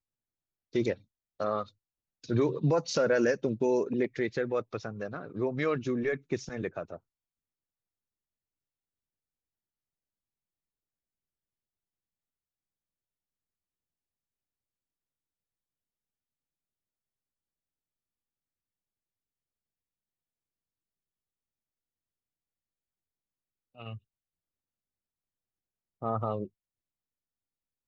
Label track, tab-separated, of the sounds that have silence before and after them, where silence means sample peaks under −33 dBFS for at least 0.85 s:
23.810000	23.930000	sound
26.020000	26.440000	sound